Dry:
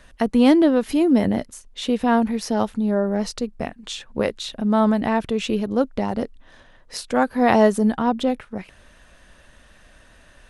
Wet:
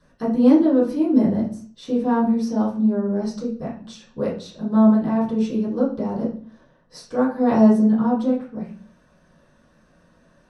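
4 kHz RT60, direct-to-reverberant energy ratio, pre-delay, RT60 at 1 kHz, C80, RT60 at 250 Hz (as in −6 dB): 0.40 s, −11.0 dB, 3 ms, 0.45 s, 11.5 dB, 0.70 s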